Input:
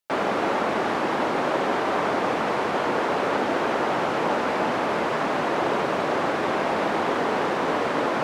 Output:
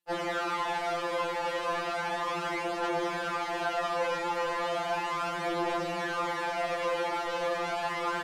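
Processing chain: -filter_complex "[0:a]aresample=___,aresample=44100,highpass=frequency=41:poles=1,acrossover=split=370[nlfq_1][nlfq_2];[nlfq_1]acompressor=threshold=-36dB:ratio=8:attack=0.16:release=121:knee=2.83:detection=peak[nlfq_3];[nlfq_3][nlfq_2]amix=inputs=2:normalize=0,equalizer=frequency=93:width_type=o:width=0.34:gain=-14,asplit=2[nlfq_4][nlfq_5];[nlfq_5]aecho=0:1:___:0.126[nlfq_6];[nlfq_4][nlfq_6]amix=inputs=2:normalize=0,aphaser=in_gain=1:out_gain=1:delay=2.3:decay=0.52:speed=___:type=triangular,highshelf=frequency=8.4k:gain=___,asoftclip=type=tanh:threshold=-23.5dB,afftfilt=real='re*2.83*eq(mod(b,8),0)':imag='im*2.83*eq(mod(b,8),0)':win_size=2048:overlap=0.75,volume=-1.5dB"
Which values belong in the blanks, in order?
32000, 199, 0.35, 4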